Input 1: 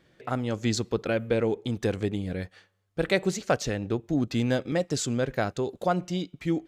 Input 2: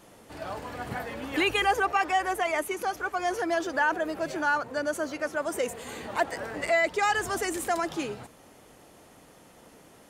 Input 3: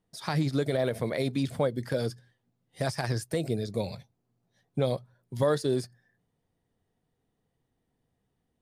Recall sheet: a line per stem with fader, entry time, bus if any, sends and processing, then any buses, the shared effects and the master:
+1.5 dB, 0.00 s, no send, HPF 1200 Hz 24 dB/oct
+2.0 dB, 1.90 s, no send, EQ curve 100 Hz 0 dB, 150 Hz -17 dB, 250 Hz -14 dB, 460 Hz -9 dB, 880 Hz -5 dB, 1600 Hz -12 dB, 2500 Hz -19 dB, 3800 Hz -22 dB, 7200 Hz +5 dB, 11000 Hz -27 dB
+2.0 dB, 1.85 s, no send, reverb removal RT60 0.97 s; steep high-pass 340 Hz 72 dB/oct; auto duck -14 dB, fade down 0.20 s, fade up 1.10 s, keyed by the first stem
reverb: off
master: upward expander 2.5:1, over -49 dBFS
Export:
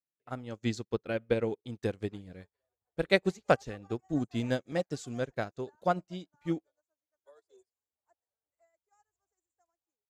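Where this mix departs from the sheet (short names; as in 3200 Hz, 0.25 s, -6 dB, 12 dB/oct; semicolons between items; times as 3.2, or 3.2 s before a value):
stem 1: missing HPF 1200 Hz 24 dB/oct; stem 2 +2.0 dB -> -8.5 dB; stem 3 +2.0 dB -> -4.5 dB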